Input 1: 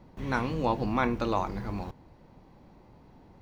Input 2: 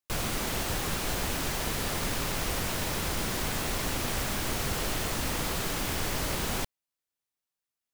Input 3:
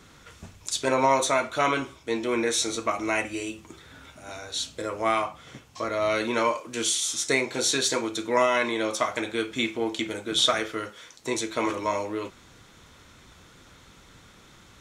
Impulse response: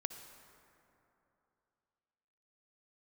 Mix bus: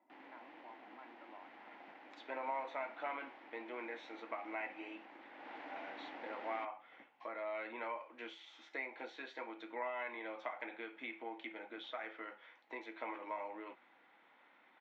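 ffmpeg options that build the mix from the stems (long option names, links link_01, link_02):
-filter_complex "[0:a]aecho=1:1:3:0.65,acompressor=threshold=-37dB:ratio=5,volume=-18dB[link_01];[1:a]aeval=exprs='val(0)*sin(2*PI*290*n/s)':channel_layout=same,volume=-14dB,afade=type=in:start_time=5.33:duration=0.22:silence=0.398107[link_02];[2:a]acompressor=threshold=-29dB:ratio=3,adelay=1450,volume=-12dB[link_03];[link_01][link_02][link_03]amix=inputs=3:normalize=0,highpass=frequency=300:width=0.5412,highpass=frequency=300:width=1.3066,equalizer=frequency=410:width_type=q:width=4:gain=-9,equalizer=frequency=820:width_type=q:width=4:gain=9,equalizer=frequency=1200:width_type=q:width=4:gain=-3,equalizer=frequency=2000:width_type=q:width=4:gain=5,lowpass=frequency=2700:width=0.5412,lowpass=frequency=2700:width=1.3066"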